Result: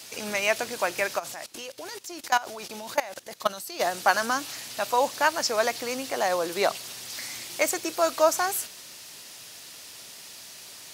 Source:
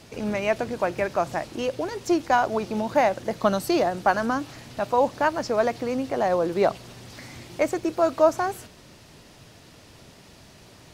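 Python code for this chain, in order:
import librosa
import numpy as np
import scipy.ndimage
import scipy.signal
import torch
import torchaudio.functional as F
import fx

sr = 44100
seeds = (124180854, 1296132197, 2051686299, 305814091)

y = fx.tilt_eq(x, sr, slope=4.5)
y = fx.level_steps(y, sr, step_db=19, at=(1.18, 3.79), fade=0.02)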